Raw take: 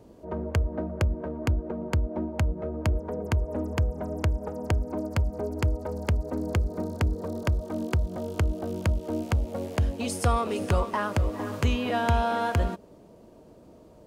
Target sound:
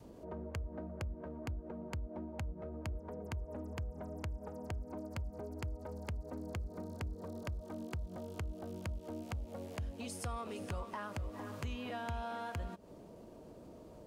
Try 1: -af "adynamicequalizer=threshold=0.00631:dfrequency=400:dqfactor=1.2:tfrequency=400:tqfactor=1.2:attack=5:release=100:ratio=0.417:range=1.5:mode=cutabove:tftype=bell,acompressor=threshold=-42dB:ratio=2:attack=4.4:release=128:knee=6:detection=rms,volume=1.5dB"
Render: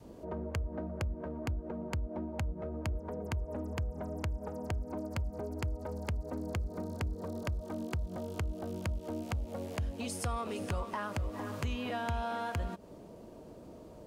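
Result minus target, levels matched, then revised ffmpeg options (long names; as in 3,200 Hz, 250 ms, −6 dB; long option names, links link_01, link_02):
downward compressor: peak gain reduction −5.5 dB
-af "adynamicequalizer=threshold=0.00631:dfrequency=400:dqfactor=1.2:tfrequency=400:tqfactor=1.2:attack=5:release=100:ratio=0.417:range=1.5:mode=cutabove:tftype=bell,acompressor=threshold=-53dB:ratio=2:attack=4.4:release=128:knee=6:detection=rms,volume=1.5dB"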